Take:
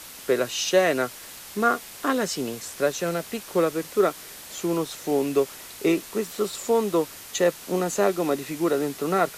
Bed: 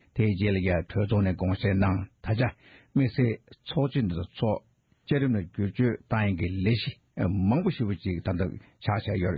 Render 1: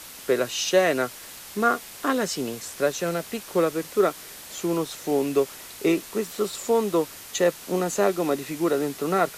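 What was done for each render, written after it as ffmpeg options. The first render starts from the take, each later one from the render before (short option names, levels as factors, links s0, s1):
-af anull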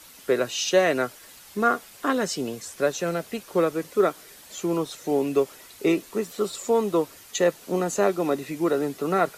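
-af "afftdn=nr=8:nf=-42"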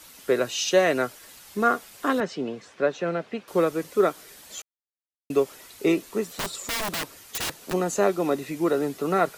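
-filter_complex "[0:a]asettb=1/sr,asplit=3[s0][s1][s2];[s0]atrim=end=2.204[s3];[s1]atrim=start=2.2:end=3.48,asetpts=PTS-STARTPTS,afade=t=in:d=0.004:c=qsin,afade=t=out:st=1.276:d=0.004:c=qsin,highpass=140,lowpass=2900[s4];[s2]atrim=start=3.476[s5];[s3][s4]acrossfade=d=0.004:c1=hsin:c2=qsin[s6];[s6][s5]acrossfade=d=0.004:c1=qsin:c2=hsin,asplit=3[s7][s8][s9];[s7]afade=t=out:st=6.28:d=0.02[s10];[s8]aeval=exprs='(mod(15*val(0)+1,2)-1)/15':c=same,afade=t=in:st=6.28:d=0.02,afade=t=out:st=7.72:d=0.02[s11];[s9]afade=t=in:st=7.72:d=0.02[s12];[s10][s11][s12]amix=inputs=3:normalize=0,asplit=3[s13][s14][s15];[s13]atrim=end=4.62,asetpts=PTS-STARTPTS,afade=t=out:st=4.616:d=0.004:c=hsin[s16];[s14]atrim=start=4.62:end=5.3,asetpts=PTS-STARTPTS,volume=0[s17];[s15]atrim=start=5.3,asetpts=PTS-STARTPTS,afade=t=in:d=0.004:c=hsin[s18];[s16][s17][s18]concat=n=3:v=0:a=1"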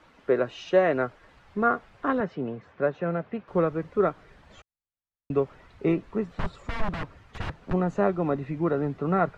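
-af "lowpass=1600,asubboost=boost=5.5:cutoff=140"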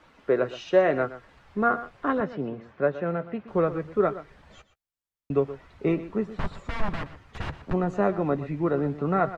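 -filter_complex "[0:a]asplit=2[s0][s1];[s1]adelay=14,volume=0.2[s2];[s0][s2]amix=inputs=2:normalize=0,aecho=1:1:122:0.188"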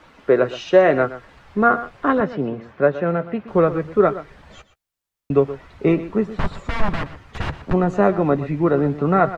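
-af "volume=2.37,alimiter=limit=0.794:level=0:latency=1"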